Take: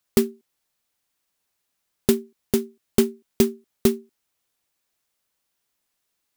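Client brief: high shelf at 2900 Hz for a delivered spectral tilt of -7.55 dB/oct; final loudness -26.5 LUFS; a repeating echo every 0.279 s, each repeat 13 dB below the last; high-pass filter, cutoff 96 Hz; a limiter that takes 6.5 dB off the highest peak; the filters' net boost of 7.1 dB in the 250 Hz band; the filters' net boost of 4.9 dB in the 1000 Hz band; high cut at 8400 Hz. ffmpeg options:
-af "highpass=96,lowpass=8.4k,equalizer=f=250:t=o:g=8,equalizer=f=1k:t=o:g=6.5,highshelf=f=2.9k:g=-4.5,alimiter=limit=-5.5dB:level=0:latency=1,aecho=1:1:279|558|837:0.224|0.0493|0.0108,volume=-4dB"

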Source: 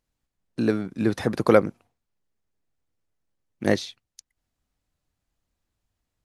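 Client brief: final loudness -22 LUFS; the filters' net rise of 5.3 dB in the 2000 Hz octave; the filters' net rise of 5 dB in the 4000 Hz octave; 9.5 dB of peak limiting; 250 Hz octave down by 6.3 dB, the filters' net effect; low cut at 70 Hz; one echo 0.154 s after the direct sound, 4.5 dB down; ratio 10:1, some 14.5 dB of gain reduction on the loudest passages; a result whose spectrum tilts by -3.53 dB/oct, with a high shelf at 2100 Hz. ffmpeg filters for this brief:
-af "highpass=70,equalizer=f=250:t=o:g=-8.5,equalizer=f=2k:t=o:g=7,highshelf=f=2.1k:g=-3.5,equalizer=f=4k:t=o:g=7,acompressor=threshold=-26dB:ratio=10,alimiter=limit=-19dB:level=0:latency=1,aecho=1:1:154:0.596,volume=12.5dB"

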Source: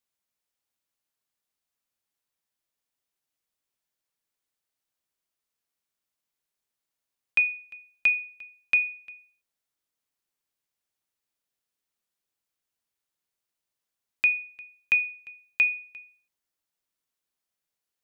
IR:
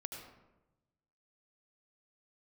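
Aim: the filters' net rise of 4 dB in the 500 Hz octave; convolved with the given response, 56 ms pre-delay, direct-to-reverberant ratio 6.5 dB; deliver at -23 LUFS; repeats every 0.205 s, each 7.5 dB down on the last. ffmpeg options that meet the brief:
-filter_complex "[0:a]equalizer=f=500:t=o:g=5,aecho=1:1:205|410|615|820|1025:0.422|0.177|0.0744|0.0312|0.0131,asplit=2[a][b];[1:a]atrim=start_sample=2205,adelay=56[c];[b][c]afir=irnorm=-1:irlink=0,volume=-4.5dB[d];[a][d]amix=inputs=2:normalize=0,volume=2dB"

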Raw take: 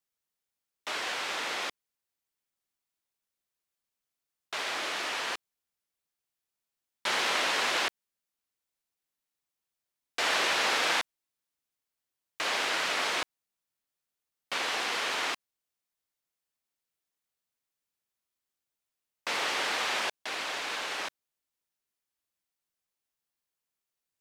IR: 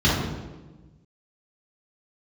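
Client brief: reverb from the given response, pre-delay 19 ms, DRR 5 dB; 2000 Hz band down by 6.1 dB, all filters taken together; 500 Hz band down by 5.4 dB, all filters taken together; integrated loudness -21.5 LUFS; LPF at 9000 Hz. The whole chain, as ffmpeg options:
-filter_complex "[0:a]lowpass=9k,equalizer=f=500:t=o:g=-6.5,equalizer=f=2k:t=o:g=-7.5,asplit=2[a][b];[1:a]atrim=start_sample=2205,adelay=19[c];[b][c]afir=irnorm=-1:irlink=0,volume=-23.5dB[d];[a][d]amix=inputs=2:normalize=0,volume=11dB"

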